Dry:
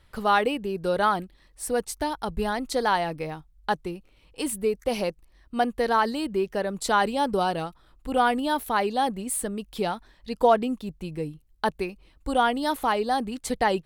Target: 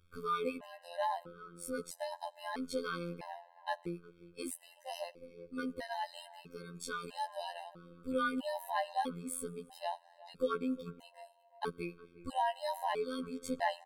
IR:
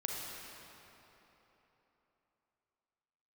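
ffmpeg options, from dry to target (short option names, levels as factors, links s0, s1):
-filter_complex "[0:a]asettb=1/sr,asplit=3[s0][s1][s2];[s0]atrim=end=5.804[s3];[s1]atrim=start=5.8:end=7.38,asetpts=PTS-STARTPTS,afade=t=in:d=0.004:c=qsin,afade=t=out:st=1.576:d=0.004:c=qsin,equalizer=f=470:w=0.3:g=-5.5[s4];[s2]atrim=start=7.376[s5];[s3][s4]acrossfade=d=0.004:c1=hsin:c2=qsin[s6];[s6][s5]acrossfade=d=0.004:c1=qsin:c2=hsin,asplit=2[s7][s8];[s8]adelay=358,lowpass=f=1400:p=1,volume=0.15,asplit=2[s9][s10];[s10]adelay=358,lowpass=f=1400:p=1,volume=0.42,asplit=2[s11][s12];[s12]adelay=358,lowpass=f=1400:p=1,volume=0.42,asplit=2[s13][s14];[s14]adelay=358,lowpass=f=1400:p=1,volume=0.42[s15];[s7][s9][s11][s13][s15]amix=inputs=5:normalize=0,asplit=2[s16][s17];[1:a]atrim=start_sample=2205,asetrate=61740,aresample=44100[s18];[s17][s18]afir=irnorm=-1:irlink=0,volume=0.112[s19];[s16][s19]amix=inputs=2:normalize=0,afftfilt=real='hypot(re,im)*cos(PI*b)':imag='0':win_size=2048:overlap=0.75,afftfilt=real='re*gt(sin(2*PI*0.77*pts/sr)*(1-2*mod(floor(b*sr/1024/530),2)),0)':imag='im*gt(sin(2*PI*0.77*pts/sr)*(1-2*mod(floor(b*sr/1024/530),2)),0)':win_size=1024:overlap=0.75,volume=0.473"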